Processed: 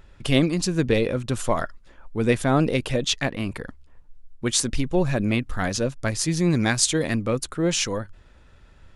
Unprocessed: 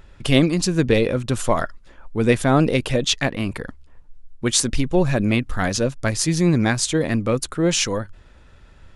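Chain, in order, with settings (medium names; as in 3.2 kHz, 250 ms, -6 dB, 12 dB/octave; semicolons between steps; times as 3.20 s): 6.50–7.15 s: treble shelf 2.2 kHz +6.5 dB; short-mantissa float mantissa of 8-bit; trim -3.5 dB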